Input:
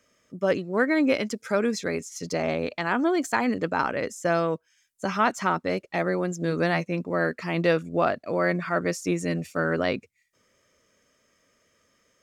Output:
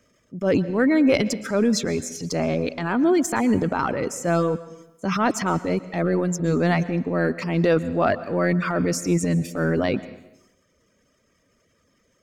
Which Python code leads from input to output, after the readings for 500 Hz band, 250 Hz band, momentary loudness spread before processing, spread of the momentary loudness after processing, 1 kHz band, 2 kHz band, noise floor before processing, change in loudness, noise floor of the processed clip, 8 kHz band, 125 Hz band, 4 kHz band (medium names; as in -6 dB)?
+2.5 dB, +6.0 dB, 5 LU, 7 LU, +0.5 dB, -0.5 dB, -69 dBFS, +3.5 dB, -66 dBFS, +7.0 dB, +7.0 dB, +3.0 dB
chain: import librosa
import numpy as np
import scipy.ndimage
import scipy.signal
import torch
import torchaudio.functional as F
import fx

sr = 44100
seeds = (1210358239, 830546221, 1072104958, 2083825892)

y = fx.dereverb_blind(x, sr, rt60_s=0.85)
y = fx.low_shelf(y, sr, hz=420.0, db=10.5)
y = fx.transient(y, sr, attack_db=-6, sustain_db=8)
y = fx.rev_plate(y, sr, seeds[0], rt60_s=0.92, hf_ratio=0.95, predelay_ms=105, drr_db=15.5)